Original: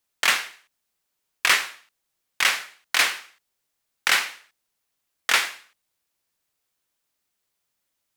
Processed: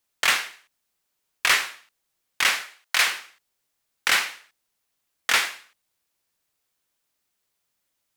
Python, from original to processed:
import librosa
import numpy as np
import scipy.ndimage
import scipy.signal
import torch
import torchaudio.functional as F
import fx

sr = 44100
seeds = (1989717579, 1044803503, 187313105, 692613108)

y = fx.highpass(x, sr, hz=fx.line((2.63, 230.0), (3.05, 690.0)), slope=12, at=(2.63, 3.05), fade=0.02)
y = 10.0 ** (-10.5 / 20.0) * np.tanh(y / 10.0 ** (-10.5 / 20.0))
y = F.gain(torch.from_numpy(y), 1.0).numpy()